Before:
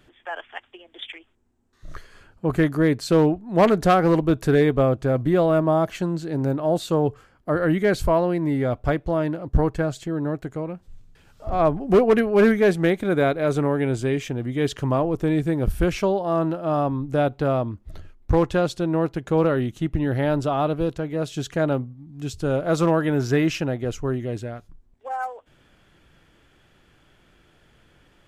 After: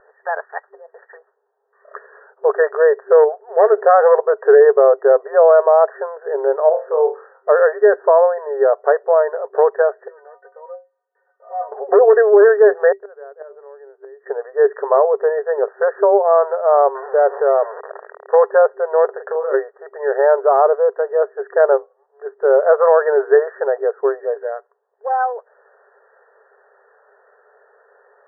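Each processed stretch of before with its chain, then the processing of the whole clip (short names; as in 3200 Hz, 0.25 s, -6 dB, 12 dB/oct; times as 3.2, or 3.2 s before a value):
3.24–3.79 notch 1000 Hz, Q 9 + compressor 1.5:1, threshold -27 dBFS
6.69–7.49 median filter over 3 samples + compressor 2:1, threshold -29 dBFS + flutter echo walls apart 4.2 m, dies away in 0.29 s
10.08–11.72 compressor 10:1, threshold -22 dBFS + metallic resonator 110 Hz, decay 0.41 s, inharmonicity 0.03
12.92–14.26 de-hum 149 Hz, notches 8 + flipped gate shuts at -16 dBFS, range -27 dB
16.95–18.34 zero-crossing step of -28 dBFS + compressor 2.5:1, threshold -21 dBFS
19.05–19.54 HPF 310 Hz 24 dB/oct + compressor 10:1, threshold -29 dBFS + doubler 38 ms -6 dB
whole clip: FFT band-pass 390–1900 Hz; tilt -3 dB/oct; maximiser +11 dB; gain -1.5 dB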